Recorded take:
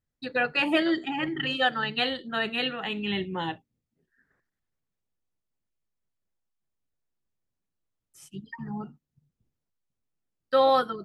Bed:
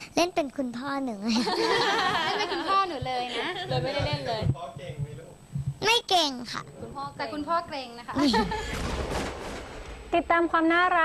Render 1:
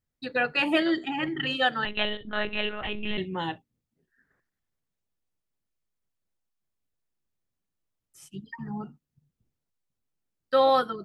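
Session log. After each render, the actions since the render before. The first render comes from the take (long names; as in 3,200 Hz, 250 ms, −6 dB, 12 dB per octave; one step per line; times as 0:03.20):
0:01.85–0:03.18: one-pitch LPC vocoder at 8 kHz 210 Hz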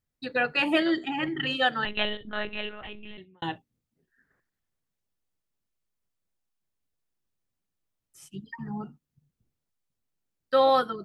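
0:02.01–0:03.42: fade out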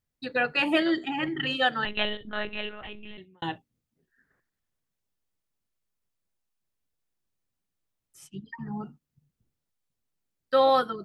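0:08.27–0:08.72: high-frequency loss of the air 80 metres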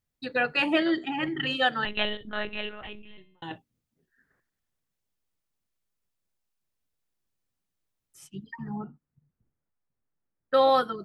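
0:00.66–0:01.21: high-frequency loss of the air 63 metres
0:03.02–0:03.51: tuned comb filter 150 Hz, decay 0.61 s
0:08.76–0:10.54: low-pass filter 1,900 Hz 24 dB per octave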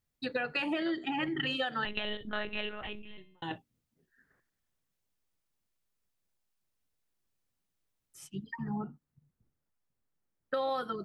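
brickwall limiter −17 dBFS, peak gain reduction 7 dB
downward compressor 12 to 1, threshold −29 dBFS, peak gain reduction 9 dB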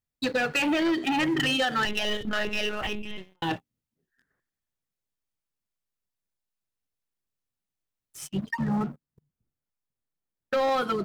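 leveller curve on the samples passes 3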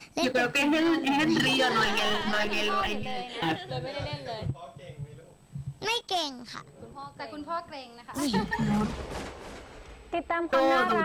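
mix in bed −6.5 dB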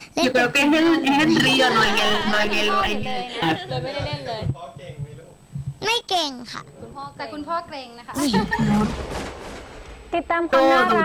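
level +7.5 dB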